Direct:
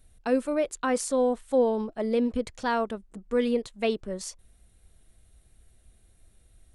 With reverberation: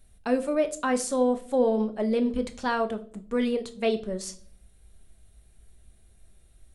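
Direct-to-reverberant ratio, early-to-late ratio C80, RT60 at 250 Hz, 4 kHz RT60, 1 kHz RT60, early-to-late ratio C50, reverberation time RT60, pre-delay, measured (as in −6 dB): 7.0 dB, 20.5 dB, 0.80 s, 0.40 s, 0.40 s, 16.0 dB, 0.50 s, 5 ms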